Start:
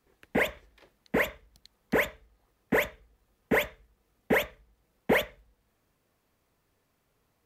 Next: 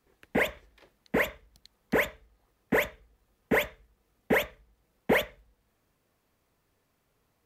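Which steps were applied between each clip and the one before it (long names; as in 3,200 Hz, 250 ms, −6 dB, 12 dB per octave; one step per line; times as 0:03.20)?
no processing that can be heard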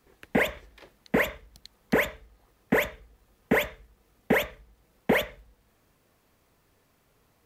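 downward compressor 4 to 1, threshold −27 dBFS, peak gain reduction 7 dB
level +7 dB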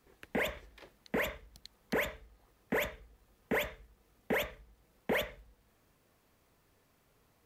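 brickwall limiter −19.5 dBFS, peak gain reduction 8.5 dB
level −3.5 dB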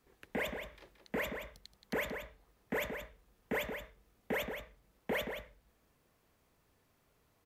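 slap from a distant wall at 30 metres, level −7 dB
level −3.5 dB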